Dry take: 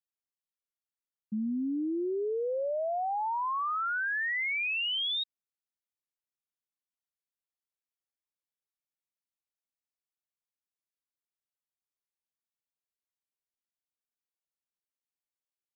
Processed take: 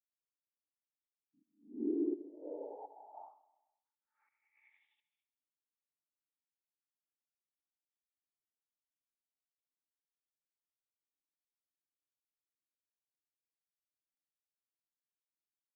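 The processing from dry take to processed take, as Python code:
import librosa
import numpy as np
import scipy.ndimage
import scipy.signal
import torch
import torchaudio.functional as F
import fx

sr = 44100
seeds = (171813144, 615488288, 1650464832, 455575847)

y = scipy.signal.sosfilt(scipy.signal.ellip(3, 1.0, 40, [780.0, 2000.0], 'bandstop', fs=sr, output='sos'), x)
y = y + 0.32 * np.pad(y, (int(5.7 * sr / 1000.0), 0))[:len(y)]
y = fx.noise_vocoder(y, sr, seeds[0], bands=12)
y = fx.volume_shaper(y, sr, bpm=84, per_beat=1, depth_db=-17, release_ms=276.0, shape='slow start')
y = fx.formant_cascade(y, sr, vowel='u')
y = fx.echo_feedback(y, sr, ms=130, feedback_pct=48, wet_db=-18)
y = fx.attack_slew(y, sr, db_per_s=150.0)
y = y * 10.0 ** (2.0 / 20.0)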